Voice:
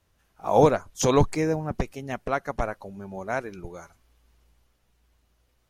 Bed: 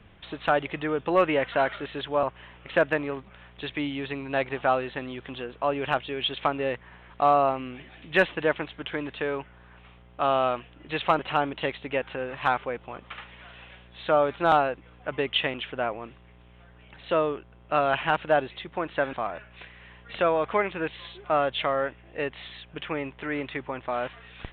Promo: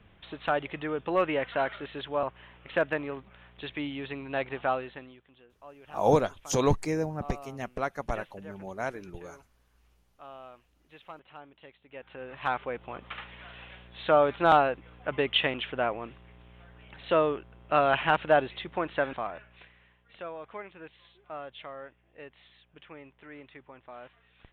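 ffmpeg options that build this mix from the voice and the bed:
-filter_complex "[0:a]adelay=5500,volume=-4.5dB[a];[1:a]volume=18.5dB,afade=t=out:st=4.68:d=0.55:silence=0.11885,afade=t=in:st=11.88:d=1.2:silence=0.0707946,afade=t=out:st=18.71:d=1.26:silence=0.149624[b];[a][b]amix=inputs=2:normalize=0"

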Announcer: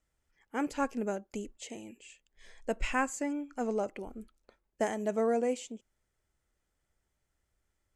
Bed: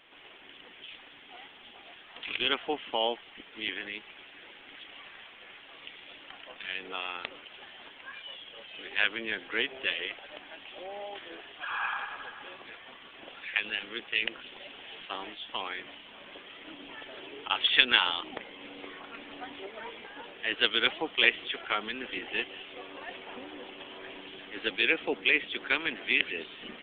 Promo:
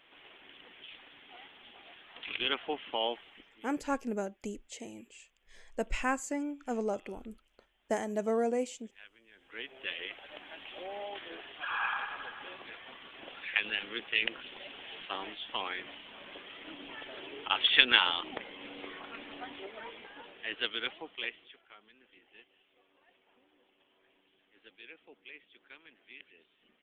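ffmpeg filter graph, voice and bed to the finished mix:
-filter_complex "[0:a]adelay=3100,volume=-1dB[a];[1:a]volume=23.5dB,afade=t=out:st=3.2:d=0.46:silence=0.0630957,afade=t=in:st=9.33:d=1.31:silence=0.0446684,afade=t=out:st=19.11:d=2.52:silence=0.0562341[b];[a][b]amix=inputs=2:normalize=0"

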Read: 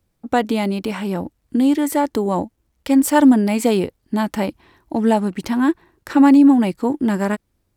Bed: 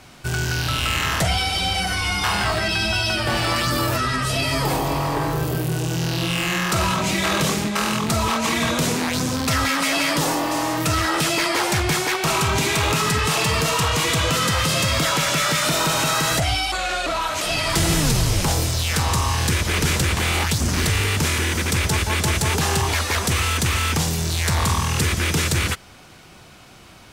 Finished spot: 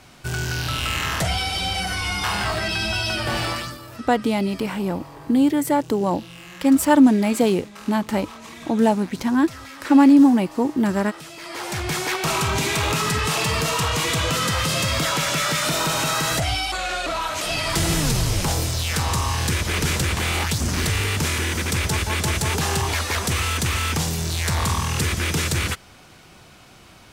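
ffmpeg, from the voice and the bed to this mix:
-filter_complex "[0:a]adelay=3750,volume=-1.5dB[a];[1:a]volume=14dB,afade=t=out:st=3.42:d=0.36:silence=0.158489,afade=t=in:st=11.38:d=0.76:silence=0.149624[b];[a][b]amix=inputs=2:normalize=0"

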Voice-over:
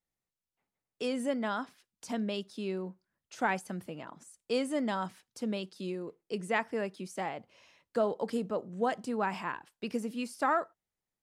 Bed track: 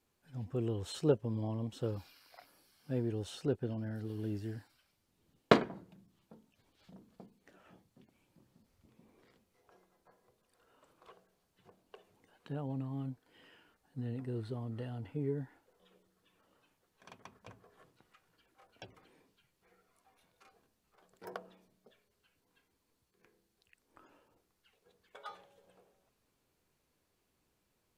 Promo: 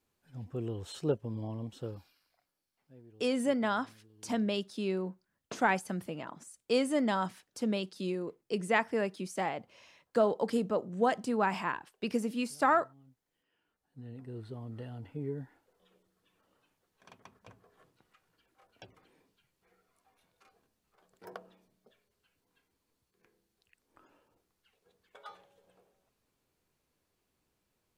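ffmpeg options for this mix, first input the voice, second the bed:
-filter_complex "[0:a]adelay=2200,volume=2.5dB[a];[1:a]volume=18dB,afade=t=out:st=1.7:d=0.68:silence=0.105925,afade=t=in:st=13.45:d=1.3:silence=0.105925[b];[a][b]amix=inputs=2:normalize=0"

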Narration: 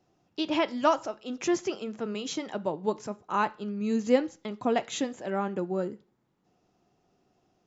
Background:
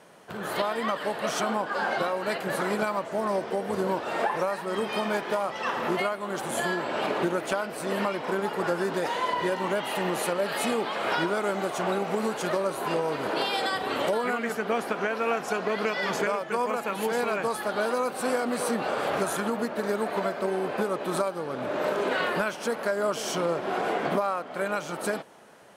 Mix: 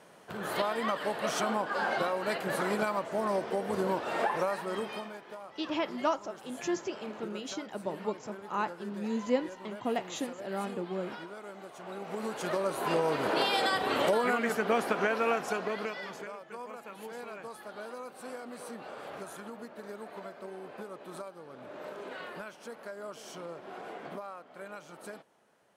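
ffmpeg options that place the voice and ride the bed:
-filter_complex "[0:a]adelay=5200,volume=-5.5dB[a];[1:a]volume=14dB,afade=t=out:st=4.6:d=0.53:silence=0.188365,afade=t=in:st=11.84:d=1.23:silence=0.141254,afade=t=out:st=15.11:d=1.03:silence=0.177828[b];[a][b]amix=inputs=2:normalize=0"

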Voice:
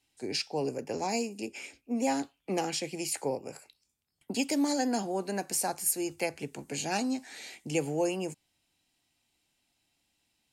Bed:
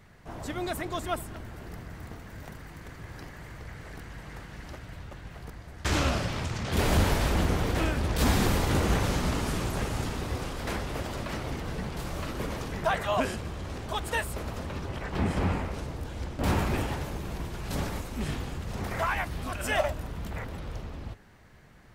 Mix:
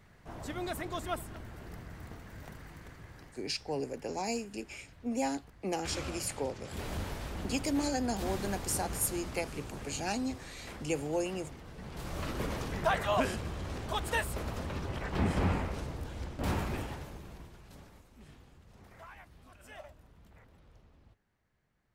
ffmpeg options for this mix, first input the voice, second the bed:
-filter_complex "[0:a]adelay=3150,volume=-3.5dB[a];[1:a]volume=7.5dB,afade=t=out:st=2.7:d=0.76:silence=0.334965,afade=t=in:st=11.76:d=0.52:silence=0.251189,afade=t=out:st=15.59:d=2.2:silence=0.0944061[b];[a][b]amix=inputs=2:normalize=0"

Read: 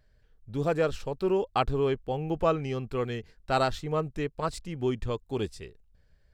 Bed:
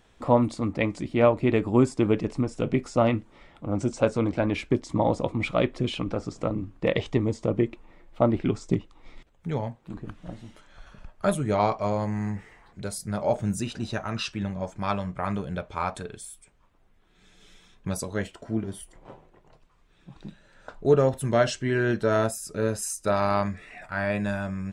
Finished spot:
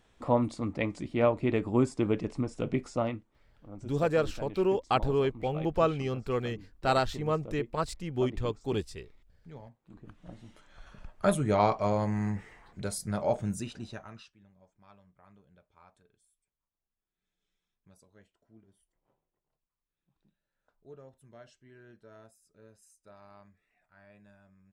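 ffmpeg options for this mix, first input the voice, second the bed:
-filter_complex "[0:a]adelay=3350,volume=-0.5dB[a];[1:a]volume=11.5dB,afade=t=out:st=2.86:d=0.41:silence=0.223872,afade=t=in:st=9.81:d=1.34:silence=0.141254,afade=t=out:st=12.99:d=1.32:silence=0.0354813[b];[a][b]amix=inputs=2:normalize=0"

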